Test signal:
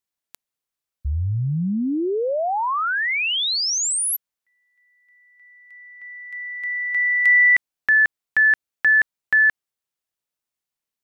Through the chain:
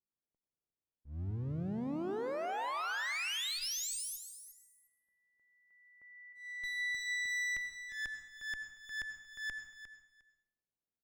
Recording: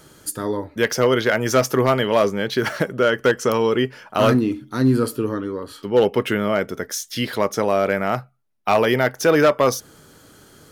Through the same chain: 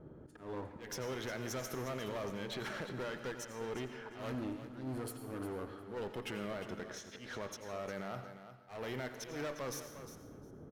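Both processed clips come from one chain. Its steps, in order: level-controlled noise filter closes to 510 Hz, open at -16.5 dBFS; band-stop 4.7 kHz, Q 8.7; compression 3:1, threshold -34 dBFS; peak limiter -27 dBFS; one-sided clip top -42 dBFS, bottom -30.5 dBFS; slow attack 167 ms; on a send: feedback delay 355 ms, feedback 16%, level -11.5 dB; on the sum: plate-style reverb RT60 0.71 s, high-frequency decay 1×, pre-delay 75 ms, DRR 9 dB; trim -2 dB

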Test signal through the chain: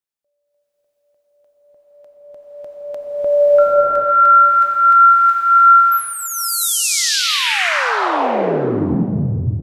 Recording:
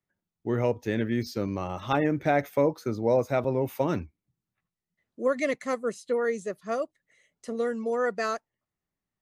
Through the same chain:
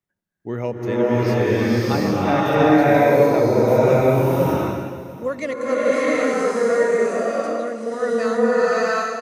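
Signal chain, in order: on a send: delay 689 ms -18.5 dB; on the sum: swelling reverb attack 720 ms, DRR -10 dB

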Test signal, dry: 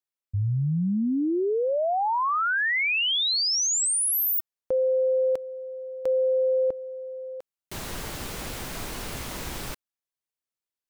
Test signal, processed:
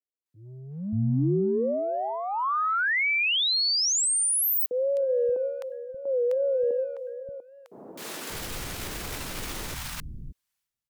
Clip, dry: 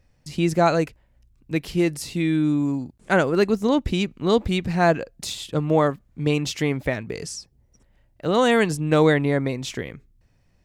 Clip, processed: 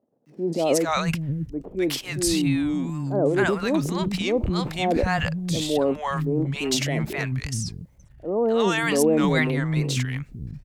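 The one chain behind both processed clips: transient shaper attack -5 dB, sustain +11 dB; wow and flutter 130 cents; three bands offset in time mids, highs, lows 260/580 ms, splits 210/760 Hz

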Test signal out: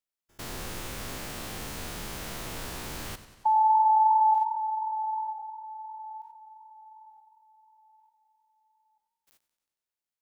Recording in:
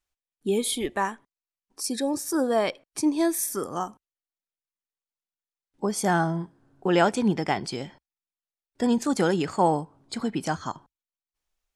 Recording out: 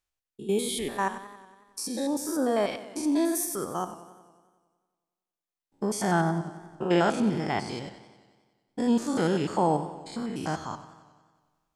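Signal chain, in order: spectrogram pixelated in time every 100 ms; modulated delay 92 ms, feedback 66%, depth 90 cents, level -14.5 dB

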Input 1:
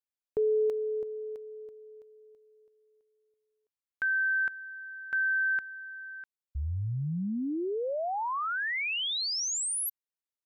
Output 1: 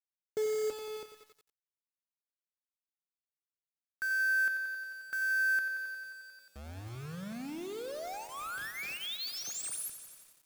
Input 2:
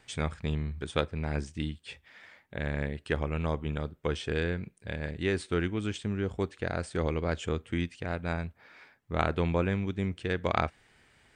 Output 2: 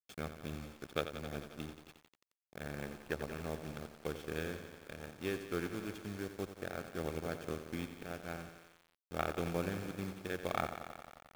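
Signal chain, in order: send-on-delta sampling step -32.5 dBFS; in parallel at -9 dB: hard clipper -21 dBFS; on the sum: comb of notches 970 Hz; power-law waveshaper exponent 1.4; bit-crushed delay 89 ms, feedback 80%, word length 8-bit, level -10 dB; trim -6 dB

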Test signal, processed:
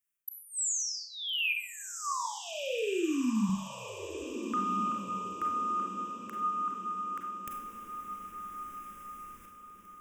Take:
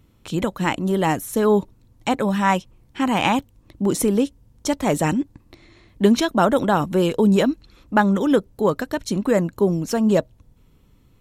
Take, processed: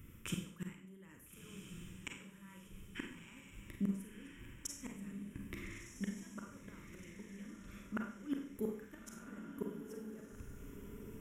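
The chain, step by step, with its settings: treble shelf 2 kHz +6.5 dB; reverse; compression 6:1, threshold -28 dBFS; reverse; static phaser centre 1.8 kHz, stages 4; inverted gate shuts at -27 dBFS, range -27 dB; on a send: echo that smears into a reverb 1367 ms, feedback 43%, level -7.5 dB; on the sum: Schroeder reverb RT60 0.54 s, combs from 32 ms, DRR 2.5 dB

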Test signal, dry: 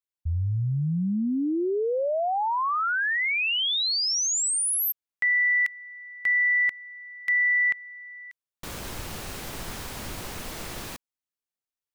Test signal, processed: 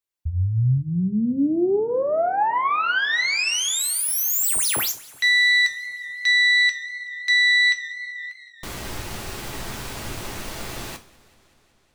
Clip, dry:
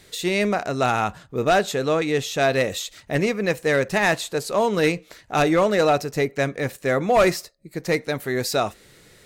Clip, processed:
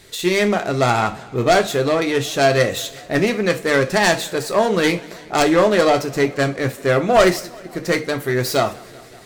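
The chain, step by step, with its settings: self-modulated delay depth 0.088 ms; two-slope reverb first 0.27 s, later 2.3 s, from -28 dB, DRR 5.5 dB; modulated delay 189 ms, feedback 75%, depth 133 cents, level -24 dB; trim +3.5 dB

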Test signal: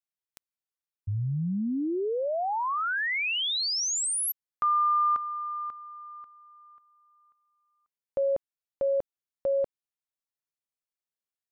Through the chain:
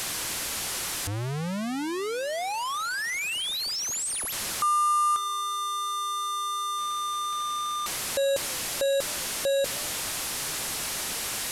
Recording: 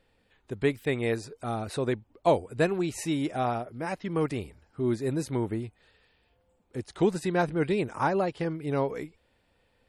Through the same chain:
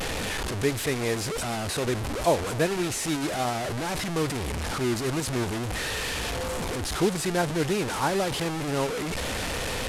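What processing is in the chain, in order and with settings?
one-bit delta coder 64 kbps, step -24 dBFS; modulated delay 251 ms, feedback 35%, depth 149 cents, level -23.5 dB

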